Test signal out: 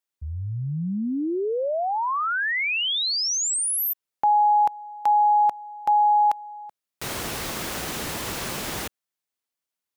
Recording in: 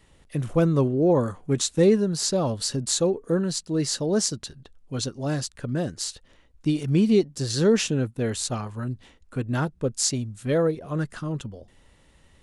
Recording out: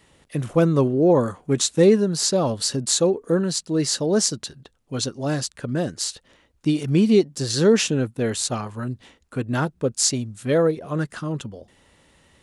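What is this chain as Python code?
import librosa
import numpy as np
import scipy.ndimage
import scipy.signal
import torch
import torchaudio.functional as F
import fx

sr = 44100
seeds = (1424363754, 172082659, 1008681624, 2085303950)

y = fx.highpass(x, sr, hz=140.0, slope=6)
y = y * librosa.db_to_amplitude(4.0)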